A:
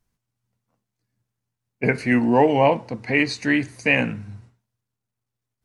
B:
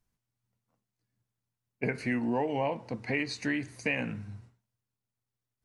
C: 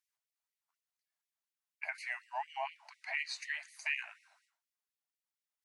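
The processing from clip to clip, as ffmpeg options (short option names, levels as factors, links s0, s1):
-af "acompressor=threshold=0.0794:ratio=4,volume=0.531"
-af "afftfilt=real='re*gte(b*sr/1024,560*pow(1900/560,0.5+0.5*sin(2*PI*4.1*pts/sr)))':imag='im*gte(b*sr/1024,560*pow(1900/560,0.5+0.5*sin(2*PI*4.1*pts/sr)))':win_size=1024:overlap=0.75,volume=0.708"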